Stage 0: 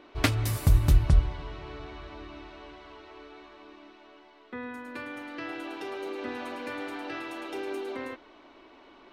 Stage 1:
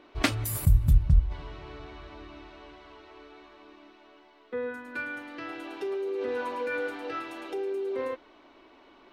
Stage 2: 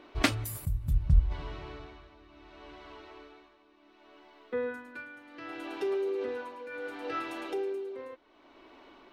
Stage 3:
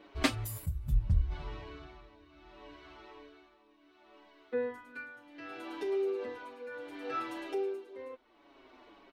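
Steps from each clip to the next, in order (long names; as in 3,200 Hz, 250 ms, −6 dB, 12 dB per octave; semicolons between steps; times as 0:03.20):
noise reduction from a noise print of the clip's start 14 dB; in parallel at 0 dB: compressor whose output falls as the input rises −42 dBFS, ratio −1
amplitude tremolo 0.68 Hz, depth 78%; level +1.5 dB
barber-pole flanger 6.6 ms −1.9 Hz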